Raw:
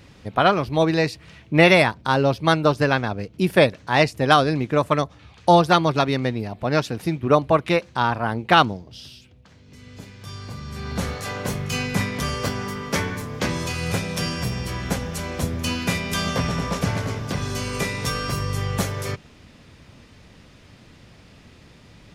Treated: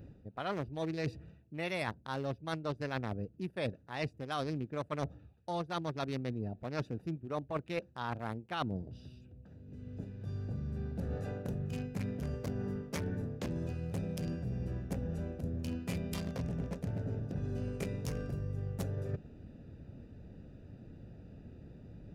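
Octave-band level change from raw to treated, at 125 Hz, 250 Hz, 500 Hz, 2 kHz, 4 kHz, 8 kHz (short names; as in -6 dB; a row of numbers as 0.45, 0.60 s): -12.0, -14.5, -18.0, -21.5, -21.5, -21.0 dB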